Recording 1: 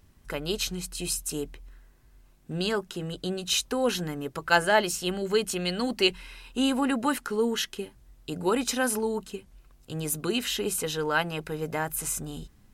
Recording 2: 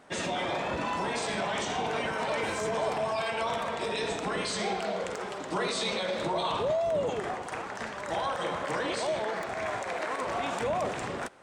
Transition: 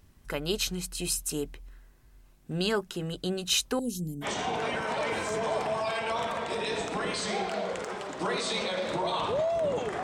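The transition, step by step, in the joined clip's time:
recording 1
0:03.79–0:04.27: Chebyshev band-stop filter 230–7,800 Hz, order 2
0:04.24: continue with recording 2 from 0:01.55, crossfade 0.06 s

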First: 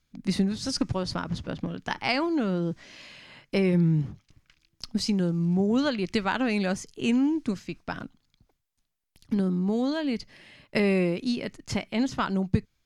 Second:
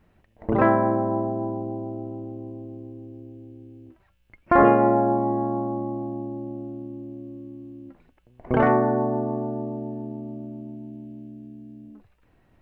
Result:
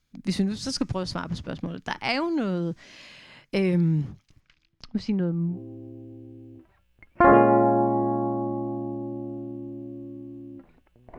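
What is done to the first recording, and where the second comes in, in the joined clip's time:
first
0:04.40–0:05.59: low-pass filter 6,300 Hz → 1,100 Hz
0:05.52: continue with second from 0:02.83, crossfade 0.14 s

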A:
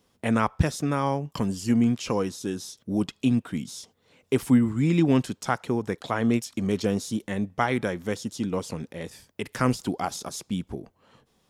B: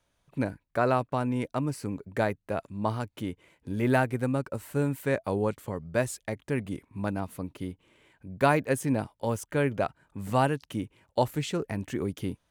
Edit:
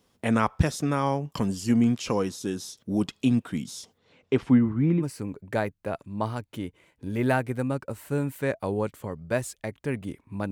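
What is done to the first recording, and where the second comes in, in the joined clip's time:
A
0:03.97–0:05.03: low-pass filter 6,600 Hz → 1,100 Hz
0:05.00: continue with B from 0:01.64, crossfade 0.06 s

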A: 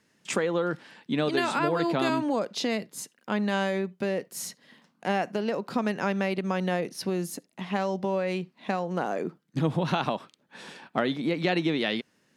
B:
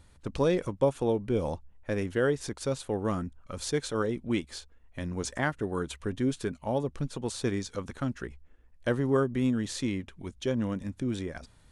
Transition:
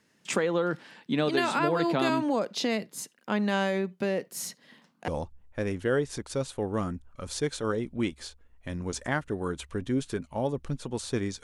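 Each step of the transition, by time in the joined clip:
A
0:05.08: continue with B from 0:01.39

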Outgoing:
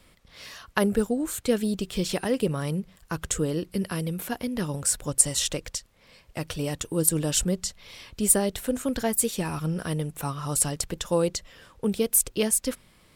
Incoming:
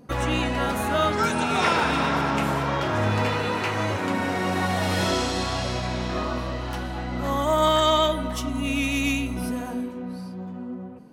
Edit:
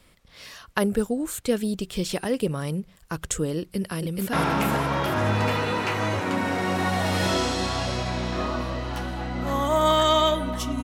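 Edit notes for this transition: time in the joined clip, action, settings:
outgoing
0:03.59–0:04.33: delay throw 430 ms, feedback 45%, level −1.5 dB
0:04.33: continue with incoming from 0:02.10

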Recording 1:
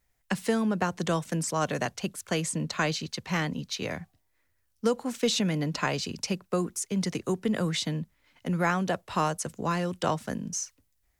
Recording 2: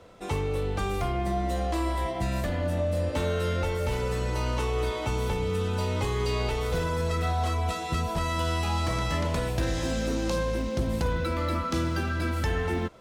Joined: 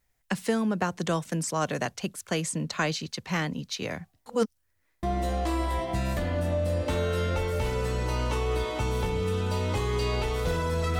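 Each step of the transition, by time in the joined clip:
recording 1
0:04.26–0:05.03: reverse
0:05.03: continue with recording 2 from 0:01.30

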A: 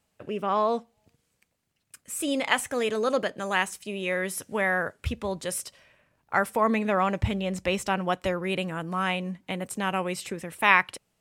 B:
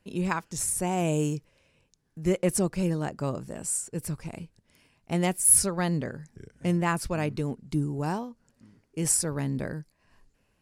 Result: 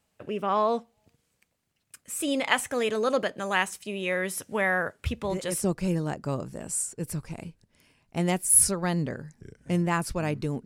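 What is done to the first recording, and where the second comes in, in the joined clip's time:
A
0:05.12: mix in B from 0:02.07 0.52 s −9 dB
0:05.64: continue with B from 0:02.59

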